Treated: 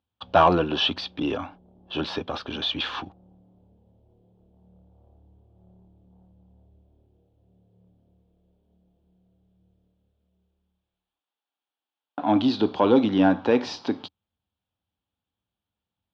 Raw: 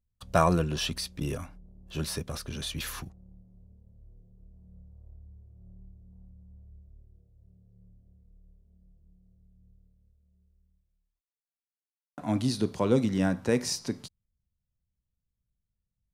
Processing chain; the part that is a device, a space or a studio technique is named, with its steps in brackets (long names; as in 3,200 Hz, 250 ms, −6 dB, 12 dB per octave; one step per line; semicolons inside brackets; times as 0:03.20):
overdrive pedal into a guitar cabinet (mid-hump overdrive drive 17 dB, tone 2,700 Hz, clips at −7.5 dBFS; loudspeaker in its box 83–4,000 Hz, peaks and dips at 90 Hz +5 dB, 140 Hz −8 dB, 290 Hz +9 dB, 820 Hz +8 dB, 2,000 Hz −9 dB, 3,300 Hz +7 dB)